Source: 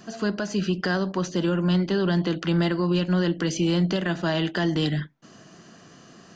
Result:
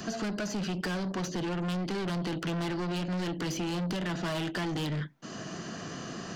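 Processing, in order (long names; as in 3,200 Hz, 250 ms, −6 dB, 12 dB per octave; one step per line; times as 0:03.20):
soft clipping −30 dBFS, distortion −6 dB
multiband upward and downward compressor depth 70%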